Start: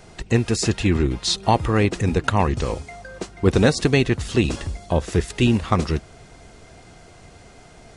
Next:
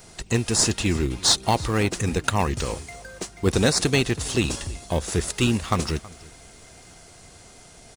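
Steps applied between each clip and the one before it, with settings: pre-emphasis filter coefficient 0.8; in parallel at -11 dB: decimation with a swept rate 12×, swing 100% 0.28 Hz; on the sum: delay 323 ms -21.5 dB; trim +7.5 dB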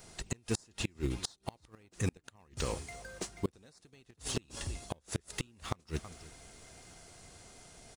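inverted gate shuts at -13 dBFS, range -33 dB; trim -7 dB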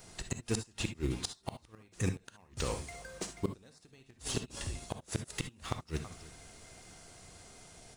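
gated-style reverb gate 90 ms rising, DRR 8 dB

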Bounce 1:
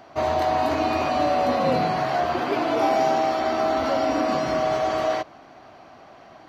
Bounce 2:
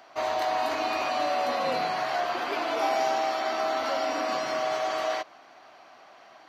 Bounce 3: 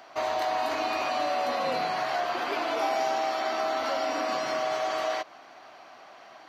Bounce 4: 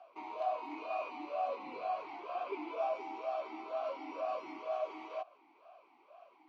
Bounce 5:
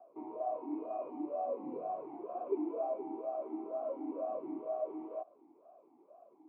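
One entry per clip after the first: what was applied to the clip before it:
high-pass 1.1 kHz 6 dB/octave
compression 1.5:1, threshold -33 dBFS, peak gain reduction 4 dB; trim +2.5 dB
talking filter a-u 2.1 Hz; trim -1.5 dB
Butterworth band-pass 230 Hz, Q 0.65; trim +8.5 dB

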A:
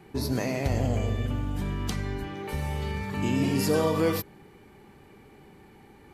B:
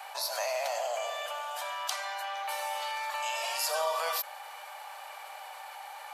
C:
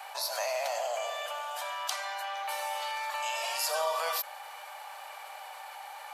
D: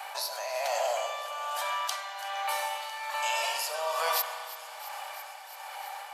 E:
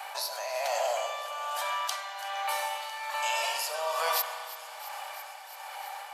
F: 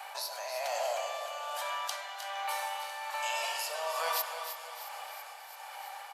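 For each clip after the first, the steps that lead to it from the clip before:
steep high-pass 590 Hz 72 dB/octave; peaking EQ 2 kHz -6.5 dB 0.56 oct; level flattener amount 50%
crackle 36 per s -51 dBFS
tremolo 1.2 Hz, depth 63%; feedback echo behind a high-pass 334 ms, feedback 82%, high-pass 3.7 kHz, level -15 dB; reverberation RT60 2.3 s, pre-delay 31 ms, DRR 6 dB; trim +4 dB
no audible change
feedback delay 309 ms, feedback 47%, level -9.5 dB; trim -4 dB

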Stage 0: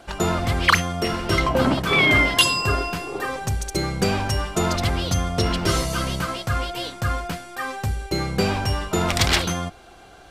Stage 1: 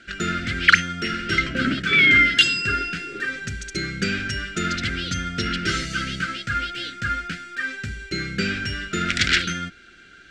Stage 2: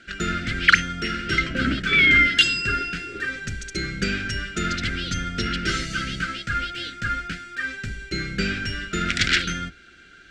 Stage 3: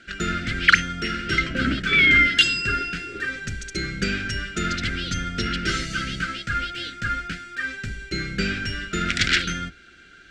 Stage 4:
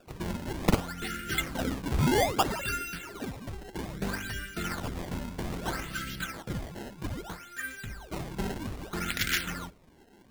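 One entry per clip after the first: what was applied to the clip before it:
FFT filter 100 Hz 0 dB, 220 Hz +8 dB, 370 Hz +3 dB, 650 Hz -10 dB, 970 Hz -29 dB, 1.4 kHz +15 dB, 7.6 kHz +4 dB, 12 kHz -16 dB; trim -8.5 dB
octave divider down 2 oct, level -5 dB; trim -1 dB
no audible change
decimation with a swept rate 21×, swing 160% 0.62 Hz; trim -8.5 dB

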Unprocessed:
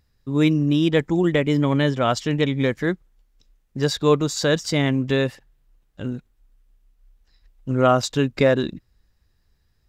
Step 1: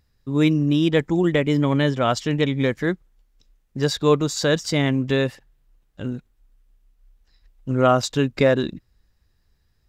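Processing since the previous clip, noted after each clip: no audible change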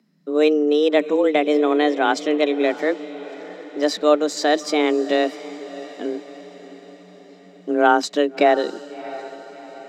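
frequency shift +150 Hz; treble shelf 7.4 kHz -8 dB; echo that smears into a reverb 663 ms, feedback 53%, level -16 dB; trim +1.5 dB

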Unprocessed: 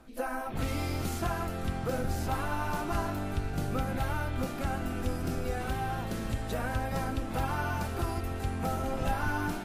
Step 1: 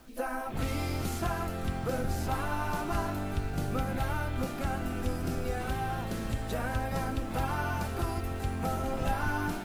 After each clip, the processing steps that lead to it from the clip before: word length cut 10-bit, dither none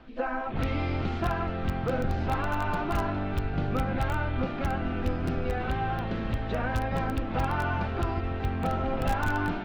low-pass 3.5 kHz 24 dB/octave; in parallel at -11.5 dB: integer overflow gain 21.5 dB; on the sum: trim +1.5 dB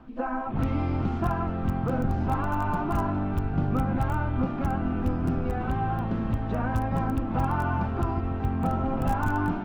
graphic EQ 125/250/500/1000/2000/4000 Hz +4/+5/-4/+5/-6/-9 dB

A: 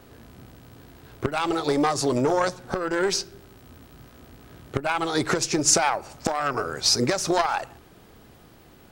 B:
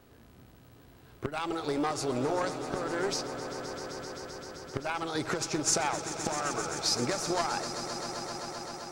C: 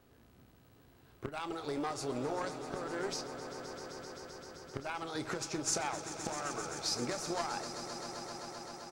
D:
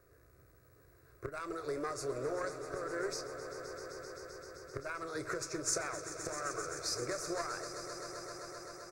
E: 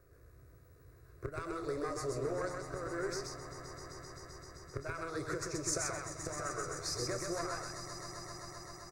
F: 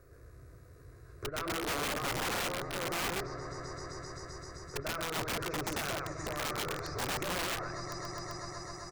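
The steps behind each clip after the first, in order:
echo with a slow build-up 130 ms, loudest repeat 5, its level -13.5 dB; trim -8.5 dB
doubling 29 ms -13.5 dB; trim -6.5 dB
static phaser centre 840 Hz, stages 6; trim +2 dB
bass shelf 210 Hz +8 dB; delay 129 ms -3.5 dB; trim -2 dB
low-pass that closes with the level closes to 2 kHz, closed at -36 dBFS; integer overflow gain 34.5 dB; trim +5.5 dB

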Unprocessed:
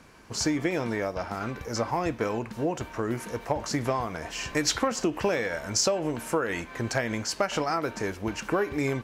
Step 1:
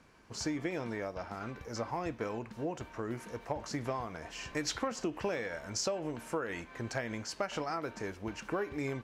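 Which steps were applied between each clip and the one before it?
treble shelf 10 kHz -8.5 dB; trim -8.5 dB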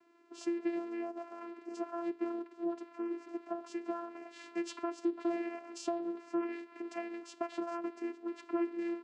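vocoder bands 8, saw 341 Hz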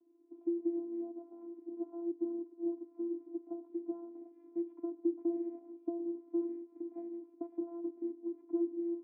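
cascade formant filter u; trim +5 dB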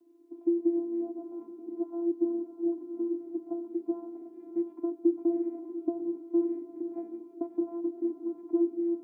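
echo that smears into a reverb 664 ms, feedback 41%, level -10 dB; trim +7.5 dB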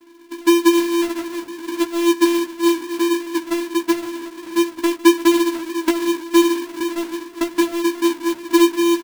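square wave that keeps the level; doubling 15 ms -3.5 dB; trim +7 dB

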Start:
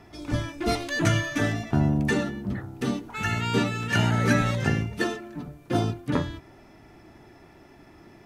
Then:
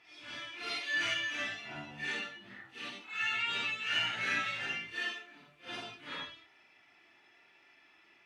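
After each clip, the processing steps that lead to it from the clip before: phase randomisation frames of 200 ms; band-pass filter 2.7 kHz, Q 2.1; trim +1.5 dB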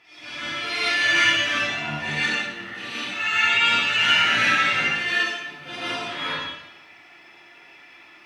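plate-style reverb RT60 0.88 s, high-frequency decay 0.9×, pre-delay 105 ms, DRR -8 dB; trim +6.5 dB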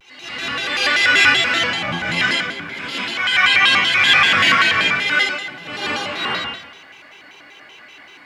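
vibrato with a chosen wave square 5.2 Hz, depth 250 cents; trim +5.5 dB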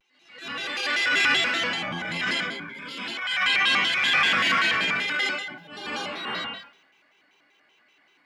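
resonant low shelf 140 Hz -6 dB, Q 1.5; transient shaper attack -11 dB, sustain +5 dB; spectral noise reduction 12 dB; trim -7.5 dB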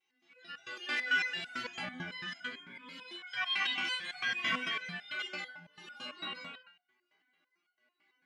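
harmonic-percussive separation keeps harmonic; resonator arpeggio 9 Hz 61–720 Hz

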